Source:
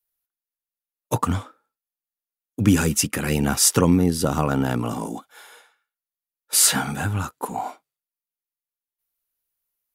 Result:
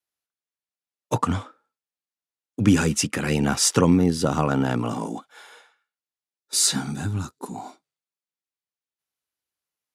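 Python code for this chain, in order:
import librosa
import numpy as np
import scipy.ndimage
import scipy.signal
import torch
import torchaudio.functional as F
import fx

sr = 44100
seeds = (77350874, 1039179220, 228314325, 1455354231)

y = scipy.signal.sosfilt(scipy.signal.butter(2, 87.0, 'highpass', fs=sr, output='sos'), x)
y = fx.spec_box(y, sr, start_s=6.38, length_s=1.45, low_hz=420.0, high_hz=3500.0, gain_db=-9)
y = scipy.signal.sosfilt(scipy.signal.butter(2, 7600.0, 'lowpass', fs=sr, output='sos'), y)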